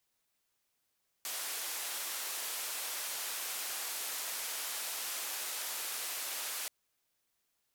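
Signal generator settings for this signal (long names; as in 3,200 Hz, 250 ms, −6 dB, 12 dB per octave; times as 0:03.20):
band-limited noise 540–15,000 Hz, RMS −39 dBFS 5.43 s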